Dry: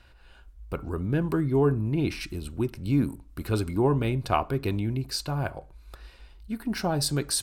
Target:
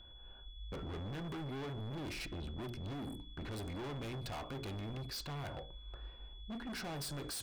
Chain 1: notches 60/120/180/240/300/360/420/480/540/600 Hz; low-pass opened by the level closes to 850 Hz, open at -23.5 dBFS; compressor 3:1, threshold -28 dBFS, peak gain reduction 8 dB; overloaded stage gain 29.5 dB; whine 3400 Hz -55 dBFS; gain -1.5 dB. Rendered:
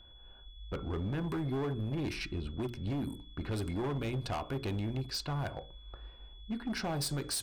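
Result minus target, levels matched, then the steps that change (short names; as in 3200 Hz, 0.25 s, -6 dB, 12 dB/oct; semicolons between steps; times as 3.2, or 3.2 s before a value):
overloaded stage: distortion -7 dB
change: overloaded stage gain 39.5 dB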